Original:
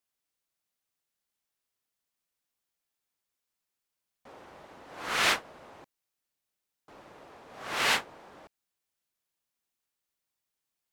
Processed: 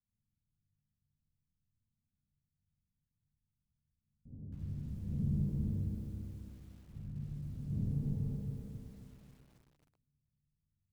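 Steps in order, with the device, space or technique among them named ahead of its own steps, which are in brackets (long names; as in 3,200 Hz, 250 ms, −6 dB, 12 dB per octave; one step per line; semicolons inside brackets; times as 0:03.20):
0:07.57–0:08.29: downward expander −42 dBFS
four-comb reverb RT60 2.2 s, combs from 28 ms, DRR −0.5 dB
club heard from the street (brickwall limiter −19.5 dBFS, peak gain reduction 9.5 dB; low-pass filter 160 Hz 24 dB per octave; convolution reverb RT60 0.60 s, pre-delay 47 ms, DRR −4 dB)
feedback echo at a low word length 269 ms, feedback 55%, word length 13 bits, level −4.5 dB
level +13 dB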